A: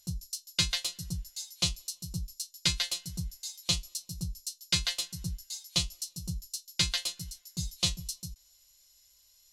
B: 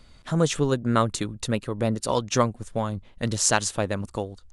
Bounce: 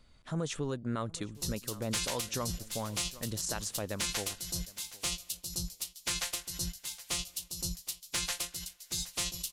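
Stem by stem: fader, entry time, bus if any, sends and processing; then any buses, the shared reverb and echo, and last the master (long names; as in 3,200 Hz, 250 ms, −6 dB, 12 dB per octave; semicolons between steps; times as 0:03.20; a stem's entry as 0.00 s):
0.0 dB, 1.35 s, no send, echo send −22.5 dB, ceiling on every frequency bin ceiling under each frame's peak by 23 dB; soft clipping −17 dBFS, distortion −20 dB
−10.0 dB, 0.00 s, no send, echo send −23 dB, no processing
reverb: not used
echo: repeating echo 766 ms, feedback 22%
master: brickwall limiter −23.5 dBFS, peak gain reduction 9.5 dB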